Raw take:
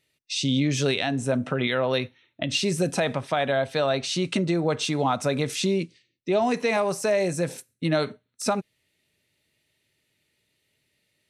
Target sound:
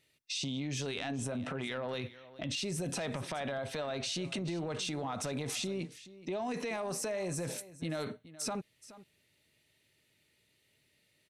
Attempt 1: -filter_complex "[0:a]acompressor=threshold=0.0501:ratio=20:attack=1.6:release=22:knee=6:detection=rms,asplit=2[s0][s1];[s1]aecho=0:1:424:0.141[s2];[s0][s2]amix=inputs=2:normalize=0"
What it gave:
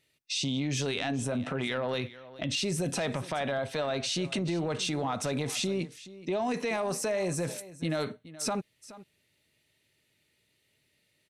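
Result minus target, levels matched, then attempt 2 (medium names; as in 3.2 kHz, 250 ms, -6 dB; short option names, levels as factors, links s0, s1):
compression: peak gain reduction -6 dB
-filter_complex "[0:a]acompressor=threshold=0.0237:ratio=20:attack=1.6:release=22:knee=6:detection=rms,asplit=2[s0][s1];[s1]aecho=0:1:424:0.141[s2];[s0][s2]amix=inputs=2:normalize=0"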